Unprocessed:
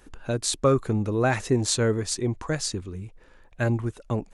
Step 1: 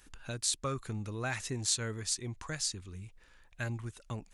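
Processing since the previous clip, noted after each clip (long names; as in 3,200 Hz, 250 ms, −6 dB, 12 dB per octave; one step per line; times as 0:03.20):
guitar amp tone stack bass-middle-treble 5-5-5
in parallel at +1 dB: downward compressor, threshold −45 dBFS, peak gain reduction 16 dB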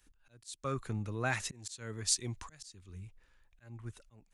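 volume swells 342 ms
multiband upward and downward expander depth 40%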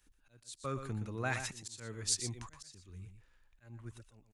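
single-tap delay 120 ms −9 dB
level −2.5 dB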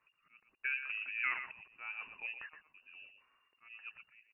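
three-way crossover with the lows and the highs turned down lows −19 dB, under 180 Hz, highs −22 dB, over 2,000 Hz
treble cut that deepens with the level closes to 1,200 Hz, closed at −38 dBFS
voice inversion scrambler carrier 2,800 Hz
level +4 dB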